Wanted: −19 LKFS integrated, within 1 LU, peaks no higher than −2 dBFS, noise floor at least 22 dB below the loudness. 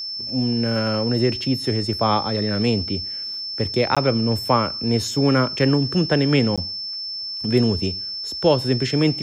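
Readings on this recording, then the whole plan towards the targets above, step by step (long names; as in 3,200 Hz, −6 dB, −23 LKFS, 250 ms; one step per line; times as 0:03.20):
number of dropouts 2; longest dropout 16 ms; interfering tone 5,300 Hz; level of the tone −27 dBFS; integrated loudness −21.0 LKFS; sample peak −5.0 dBFS; target loudness −19.0 LKFS
→ repair the gap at 0:03.95/0:06.56, 16 ms
notch filter 5,300 Hz, Q 30
level +2 dB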